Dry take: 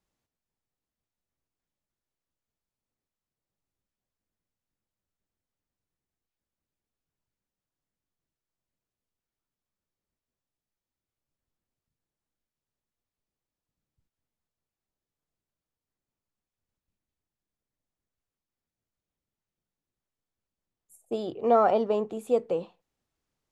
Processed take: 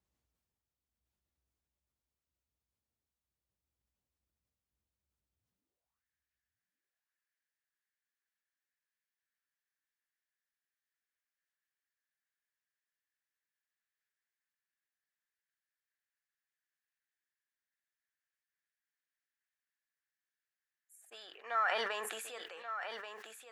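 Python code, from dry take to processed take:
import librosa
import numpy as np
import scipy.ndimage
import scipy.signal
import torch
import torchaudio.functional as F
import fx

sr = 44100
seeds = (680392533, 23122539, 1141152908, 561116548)

p1 = fx.filter_sweep_highpass(x, sr, from_hz=63.0, to_hz=1700.0, start_s=5.32, end_s=6.04, q=6.7)
p2 = p1 + fx.echo_single(p1, sr, ms=1132, db=-9.0, dry=0)
p3 = fx.sustainer(p2, sr, db_per_s=25.0)
y = p3 * 10.0 ** (-6.5 / 20.0)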